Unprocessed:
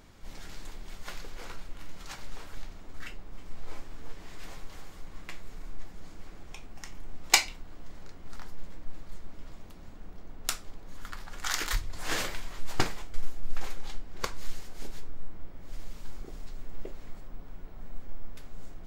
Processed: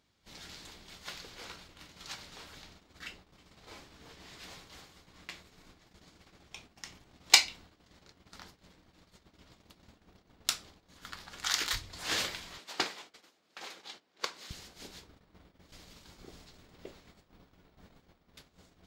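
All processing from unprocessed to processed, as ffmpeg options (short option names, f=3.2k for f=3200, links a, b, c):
-filter_complex "[0:a]asettb=1/sr,asplit=3[a][b][c];[a]atrim=end=12.574[d];[b]atrim=start=12.57:end=14.51,asetpts=PTS-STARTPTS,afade=t=in:d=0.004:c=qsin,afade=t=out:st=1.936:d=0.004:c=qsin,highpass=310,highshelf=f=7.3k:g=-6[e];[c]atrim=start=14.506[f];[d][e]acrossfade=d=0.004:c1=hsin:c2=qsin[g];[g][f]acrossfade=d=0.004:c1=qsin:c2=hsin,highpass=68,agate=range=-14dB:threshold=-51dB:ratio=16:detection=peak,equalizer=f=4k:w=0.93:g=8.5,volume=-4dB"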